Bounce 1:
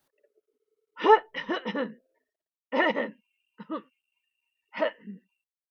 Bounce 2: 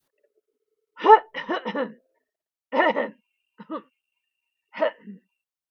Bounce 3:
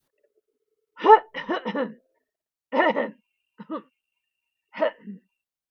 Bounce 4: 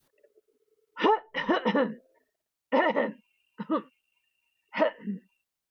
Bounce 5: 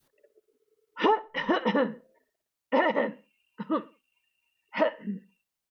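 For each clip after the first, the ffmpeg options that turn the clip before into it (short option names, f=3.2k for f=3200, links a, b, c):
-af "adynamicequalizer=threshold=0.0126:dfrequency=820:dqfactor=0.83:tfrequency=820:tqfactor=0.83:attack=5:release=100:ratio=0.375:range=3.5:mode=boostabove:tftype=bell"
-af "lowshelf=f=230:g=6,volume=-1dB"
-af "acompressor=threshold=-25dB:ratio=12,volume=5dB"
-filter_complex "[0:a]asplit=2[a][b];[b]adelay=63,lowpass=f=4.9k:p=1,volume=-20dB,asplit=2[c][d];[d]adelay=63,lowpass=f=4.9k:p=1,volume=0.32,asplit=2[e][f];[f]adelay=63,lowpass=f=4.9k:p=1,volume=0.32[g];[a][c][e][g]amix=inputs=4:normalize=0"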